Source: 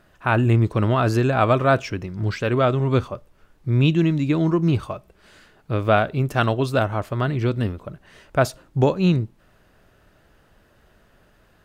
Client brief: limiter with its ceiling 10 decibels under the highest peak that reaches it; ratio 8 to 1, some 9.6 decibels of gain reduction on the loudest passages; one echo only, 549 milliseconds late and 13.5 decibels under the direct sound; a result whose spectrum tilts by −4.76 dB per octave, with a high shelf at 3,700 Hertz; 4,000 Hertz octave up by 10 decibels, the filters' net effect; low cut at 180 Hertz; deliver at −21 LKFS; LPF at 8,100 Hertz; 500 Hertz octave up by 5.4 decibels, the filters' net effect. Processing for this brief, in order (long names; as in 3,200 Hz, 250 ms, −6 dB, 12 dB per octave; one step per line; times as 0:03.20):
high-pass filter 180 Hz
low-pass filter 8,100 Hz
parametric band 500 Hz +7 dB
high-shelf EQ 3,700 Hz +7 dB
parametric band 4,000 Hz +8.5 dB
downward compressor 8 to 1, threshold −18 dBFS
brickwall limiter −13.5 dBFS
single-tap delay 549 ms −13.5 dB
level +5.5 dB